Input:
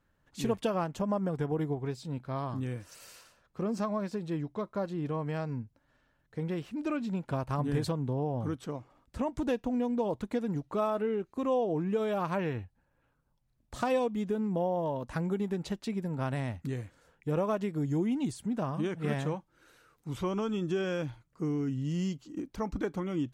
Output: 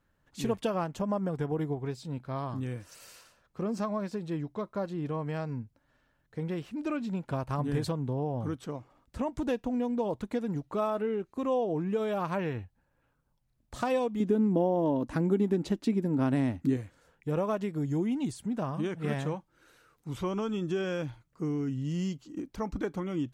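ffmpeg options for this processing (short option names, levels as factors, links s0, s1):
-filter_complex "[0:a]asettb=1/sr,asplit=3[s0][s1][s2];[s0]atrim=end=14.204[s3];[s1]atrim=start=14.2:end=16.77,asetpts=PTS-STARTPTS,afade=t=in:d=0.004:c=qsin,afade=t=out:st=2.566:d=0.004:c=qsin,equalizer=f=290:t=o:w=0.77:g=14[s4];[s2]atrim=start=16.766[s5];[s3][s4]acrossfade=d=0.004:c1=hsin:c2=qsin[s6];[s6][s5]acrossfade=d=0.004:c1=qsin:c2=hsin"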